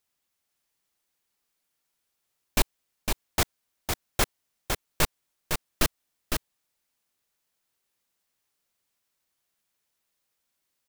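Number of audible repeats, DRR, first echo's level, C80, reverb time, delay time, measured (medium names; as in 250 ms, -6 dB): 1, no reverb, -5.0 dB, no reverb, no reverb, 507 ms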